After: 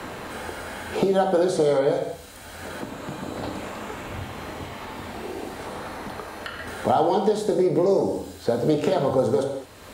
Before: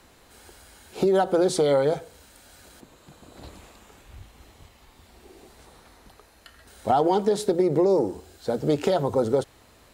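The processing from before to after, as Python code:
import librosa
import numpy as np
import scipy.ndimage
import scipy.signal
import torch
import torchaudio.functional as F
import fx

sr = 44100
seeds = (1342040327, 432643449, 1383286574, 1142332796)

y = fx.rev_gated(x, sr, seeds[0], gate_ms=250, shape='falling', drr_db=1.5)
y = fx.band_squash(y, sr, depth_pct=70)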